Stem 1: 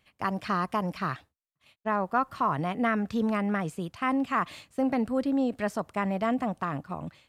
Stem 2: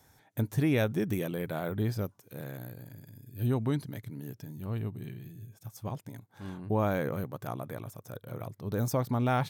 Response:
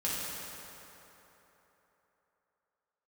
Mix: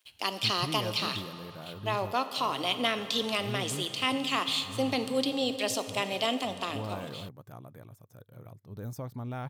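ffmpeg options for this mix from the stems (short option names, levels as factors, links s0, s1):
-filter_complex "[0:a]highshelf=f=2300:t=q:w=3:g=13,aeval=exprs='sgn(val(0))*max(abs(val(0))-0.002,0)':c=same,highpass=f=280:w=0.5412,highpass=f=280:w=1.3066,volume=0.841,asplit=2[s0][s1];[s1]volume=0.2[s2];[1:a]lowshelf=f=130:g=7,adelay=50,volume=0.266[s3];[2:a]atrim=start_sample=2205[s4];[s2][s4]afir=irnorm=-1:irlink=0[s5];[s0][s3][s5]amix=inputs=3:normalize=0"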